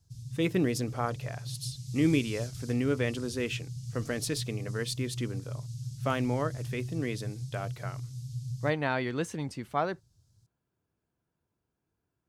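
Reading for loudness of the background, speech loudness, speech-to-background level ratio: −39.5 LKFS, −33.0 LKFS, 6.5 dB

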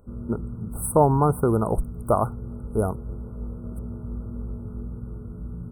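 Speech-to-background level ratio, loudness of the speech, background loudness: 12.5 dB, −24.0 LKFS, −36.5 LKFS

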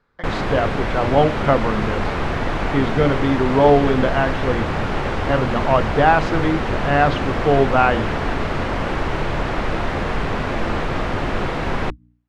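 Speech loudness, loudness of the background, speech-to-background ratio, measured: −19.5 LKFS, −23.5 LKFS, 4.0 dB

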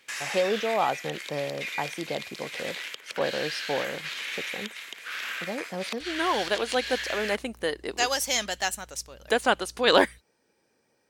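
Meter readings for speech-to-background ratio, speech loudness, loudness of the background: 6.0 dB, −28.0 LKFS, −34.0 LKFS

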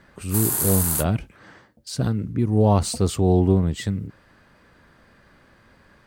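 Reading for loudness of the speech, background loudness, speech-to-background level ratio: −22.5 LKFS, −22.5 LKFS, 0.0 dB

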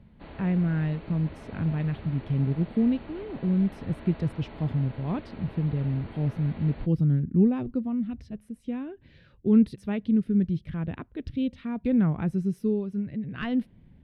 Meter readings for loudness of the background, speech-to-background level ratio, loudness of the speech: −45.0 LKFS, 17.5 dB, −27.5 LKFS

